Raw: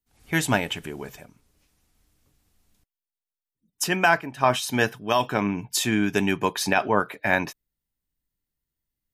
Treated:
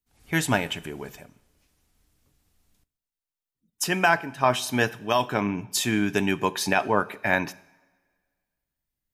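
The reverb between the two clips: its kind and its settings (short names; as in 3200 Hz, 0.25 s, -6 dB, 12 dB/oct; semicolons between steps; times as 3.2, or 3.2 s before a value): two-slope reverb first 0.76 s, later 1.9 s, from -16 dB, DRR 17.5 dB; gain -1 dB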